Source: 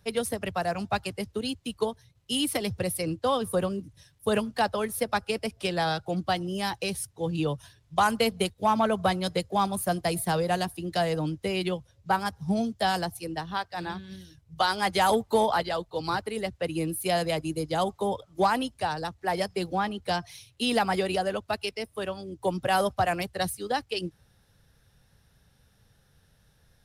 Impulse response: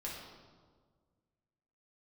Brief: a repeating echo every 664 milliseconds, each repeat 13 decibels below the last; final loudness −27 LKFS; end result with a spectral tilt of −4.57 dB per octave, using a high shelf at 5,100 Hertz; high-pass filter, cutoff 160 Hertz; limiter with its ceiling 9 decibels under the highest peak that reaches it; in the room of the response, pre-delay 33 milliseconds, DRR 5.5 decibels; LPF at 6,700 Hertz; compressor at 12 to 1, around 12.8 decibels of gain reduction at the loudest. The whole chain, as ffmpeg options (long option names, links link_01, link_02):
-filter_complex "[0:a]highpass=160,lowpass=6700,highshelf=frequency=5100:gain=4,acompressor=threshold=-32dB:ratio=12,alimiter=level_in=3.5dB:limit=-24dB:level=0:latency=1,volume=-3.5dB,aecho=1:1:664|1328|1992:0.224|0.0493|0.0108,asplit=2[link_01][link_02];[1:a]atrim=start_sample=2205,adelay=33[link_03];[link_02][link_03]afir=irnorm=-1:irlink=0,volume=-5.5dB[link_04];[link_01][link_04]amix=inputs=2:normalize=0,volume=10.5dB"